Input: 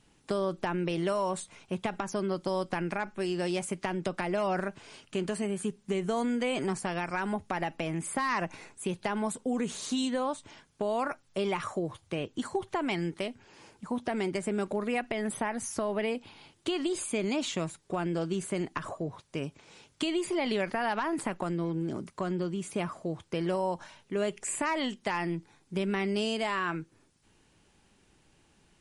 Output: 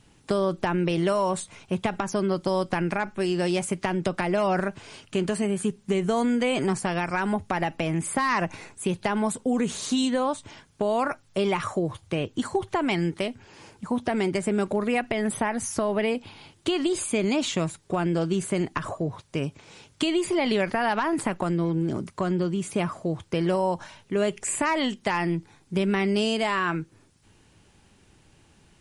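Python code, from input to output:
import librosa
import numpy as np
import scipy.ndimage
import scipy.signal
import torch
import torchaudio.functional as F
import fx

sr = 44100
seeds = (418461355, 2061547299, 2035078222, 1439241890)

y = fx.peak_eq(x, sr, hz=94.0, db=6.0, octaves=1.2)
y = y * 10.0 ** (5.5 / 20.0)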